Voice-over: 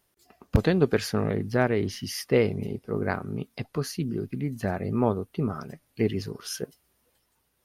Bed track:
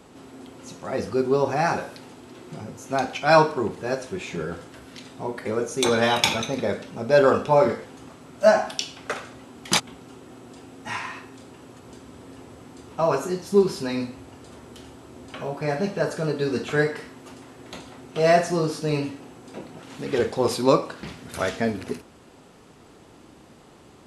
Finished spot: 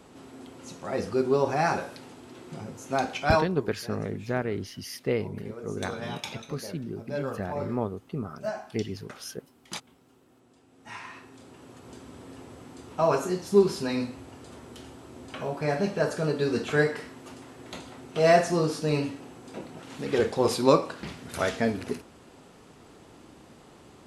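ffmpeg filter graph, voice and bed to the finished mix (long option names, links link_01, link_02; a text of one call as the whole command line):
ffmpeg -i stem1.wav -i stem2.wav -filter_complex "[0:a]adelay=2750,volume=-5.5dB[link_01];[1:a]volume=12.5dB,afade=type=out:start_time=3.21:duration=0.26:silence=0.199526,afade=type=in:start_time=10.66:duration=1.34:silence=0.177828[link_02];[link_01][link_02]amix=inputs=2:normalize=0" out.wav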